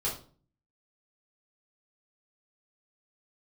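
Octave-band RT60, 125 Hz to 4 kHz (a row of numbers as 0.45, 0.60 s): 0.70, 0.60, 0.45, 0.40, 0.30, 0.35 s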